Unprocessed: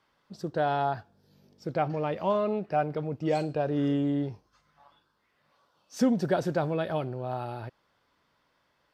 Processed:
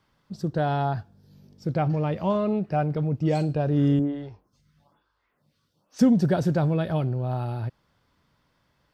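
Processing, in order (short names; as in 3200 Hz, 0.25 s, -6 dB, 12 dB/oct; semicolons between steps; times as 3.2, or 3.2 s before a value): tone controls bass +12 dB, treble +3 dB; 3.99–5.99 photocell phaser 1.1 Hz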